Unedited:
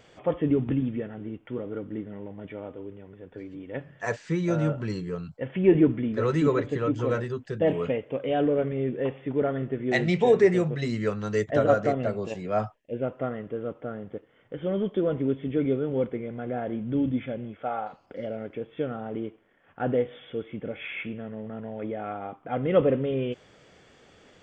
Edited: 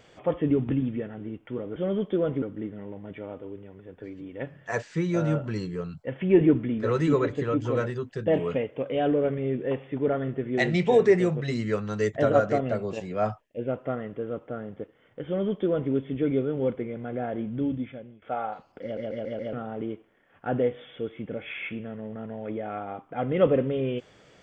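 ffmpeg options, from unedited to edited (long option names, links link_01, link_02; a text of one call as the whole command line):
ffmpeg -i in.wav -filter_complex "[0:a]asplit=9[link_01][link_02][link_03][link_04][link_05][link_06][link_07][link_08][link_09];[link_01]atrim=end=1.762[link_10];[link_02]atrim=start=14.598:end=15.262[link_11];[link_03]atrim=start=1.758:end=17.56,asetpts=PTS-STARTPTS,afade=type=out:start_time=15.042:duration=0.76:silence=0.125893[link_12];[link_04]atrim=start=17.56:end=18.312,asetpts=PTS-STARTPTS,afade=type=in:duration=0.004:curve=hsin:silence=0.125893[link_13];[link_05]atrim=start=18.168:end=18.312[link_14];[link_06]atrim=start=18.168:end=18.312[link_15];[link_07]atrim=start=18.168:end=18.312[link_16];[link_08]atrim=start=18.168:end=18.312[link_17];[link_09]atrim=start=18.868[link_18];[link_10][link_11]acrossfade=duration=0.004:curve1=hsin:curve2=hsin[link_19];[link_12][link_13]concat=n=2:v=0:a=1[link_20];[link_19][link_20]acrossfade=duration=0.004:curve1=hsin:curve2=hsin[link_21];[link_21][link_14]acrossfade=duration=0.004:curve1=hsin:curve2=hsin[link_22];[link_22][link_15]acrossfade=duration=0.004:curve1=hsin:curve2=hsin[link_23];[link_23][link_16]acrossfade=duration=0.004:curve1=hsin:curve2=hsin[link_24];[link_24][link_17]acrossfade=duration=0.004:curve1=hsin:curve2=hsin[link_25];[link_25][link_18]acrossfade=duration=0.004:curve1=hsin:curve2=hsin" out.wav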